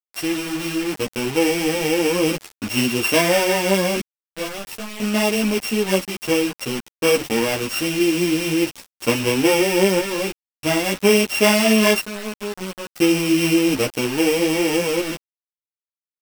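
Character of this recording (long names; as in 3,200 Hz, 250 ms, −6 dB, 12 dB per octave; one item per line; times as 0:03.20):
a buzz of ramps at a fixed pitch in blocks of 16 samples
sample-and-hold tremolo 1 Hz, depth 85%
a quantiser's noise floor 6 bits, dither none
a shimmering, thickened sound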